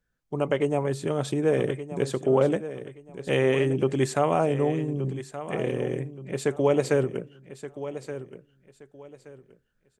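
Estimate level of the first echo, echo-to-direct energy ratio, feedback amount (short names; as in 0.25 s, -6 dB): -12.5 dB, -12.0 dB, 26%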